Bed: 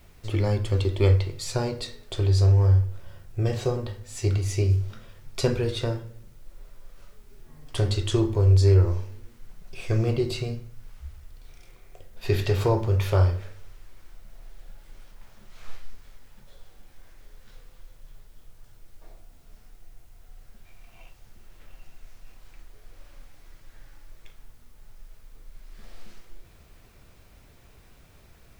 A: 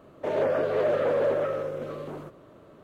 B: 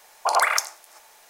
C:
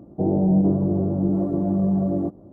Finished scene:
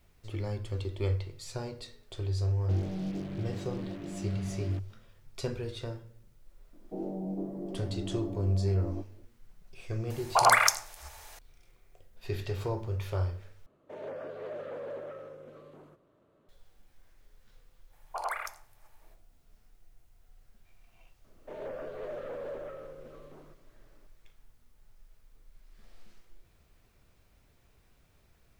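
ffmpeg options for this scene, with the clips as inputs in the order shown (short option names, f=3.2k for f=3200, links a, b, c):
-filter_complex "[3:a]asplit=2[a][b];[2:a]asplit=2[c][d];[1:a]asplit=2[e][f];[0:a]volume=-11dB[g];[a]acrusher=bits=4:mix=0:aa=0.5[h];[b]highpass=f=210:w=0.5412,highpass=f=210:w=1.3066[i];[c]acompressor=mode=upward:threshold=-43dB:ratio=2.5:attack=3.2:release=140:knee=2.83:detection=peak[j];[d]equalizer=f=6k:w=0.68:g=-10.5[k];[g]asplit=2[l][m];[l]atrim=end=13.664[n];[e]atrim=end=2.83,asetpts=PTS-STARTPTS,volume=-15.5dB[o];[m]atrim=start=16.486[p];[h]atrim=end=2.52,asetpts=PTS-STARTPTS,volume=-17.5dB,afade=t=in:d=0.004:c=hsin,afade=t=out:st=2.516:d=0.004:c=hsin,adelay=2500[q];[i]atrim=end=2.52,asetpts=PTS-STARTPTS,volume=-14dB,afade=t=in:d=0.004:c=hsin,afade=t=out:st=2.516:d=0.004:c=hsin,adelay=6730[r];[j]atrim=end=1.29,asetpts=PTS-STARTPTS,volume=-1dB,afade=t=in:d=0.004:c=hsin,afade=t=out:st=1.286:d=0.004:c=hsin,adelay=445410S[s];[k]atrim=end=1.29,asetpts=PTS-STARTPTS,volume=-13.5dB,afade=t=in:d=0.05,afade=t=out:st=1.24:d=0.05,adelay=17890[t];[f]atrim=end=2.83,asetpts=PTS-STARTPTS,volume=-15dB,afade=t=in:d=0.004:c=hsin,afade=t=out:st=2.826:d=0.004:c=hsin,adelay=21240[u];[n][o]acrossfade=d=0.004:c1=hsin:c2=hsin[v];[v][p]acrossfade=d=0.004:c1=hsin:c2=hsin[w];[w][q][r][s][t][u]amix=inputs=6:normalize=0"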